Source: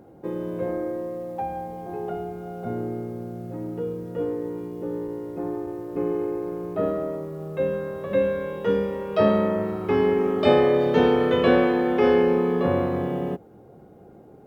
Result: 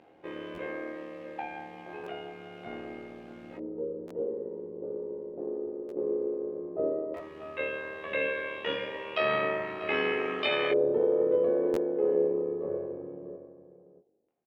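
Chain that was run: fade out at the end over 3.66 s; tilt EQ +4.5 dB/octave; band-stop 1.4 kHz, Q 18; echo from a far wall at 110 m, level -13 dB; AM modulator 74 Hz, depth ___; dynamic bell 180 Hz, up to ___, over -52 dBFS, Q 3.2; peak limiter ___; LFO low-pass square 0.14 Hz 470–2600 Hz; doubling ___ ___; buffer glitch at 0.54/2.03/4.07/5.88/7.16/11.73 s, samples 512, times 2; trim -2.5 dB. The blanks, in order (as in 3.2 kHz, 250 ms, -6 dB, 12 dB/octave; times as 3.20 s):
55%, -4 dB, -17.5 dBFS, 22 ms, -4 dB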